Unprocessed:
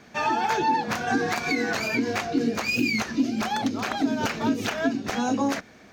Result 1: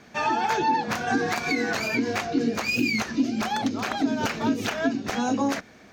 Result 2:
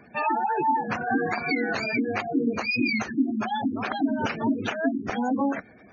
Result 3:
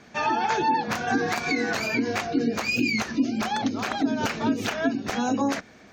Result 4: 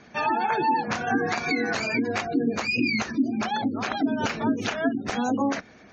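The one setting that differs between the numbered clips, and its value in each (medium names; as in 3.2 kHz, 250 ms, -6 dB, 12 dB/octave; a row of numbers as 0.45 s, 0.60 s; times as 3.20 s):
spectral gate, under each frame's peak: -55 dB, -15 dB, -40 dB, -25 dB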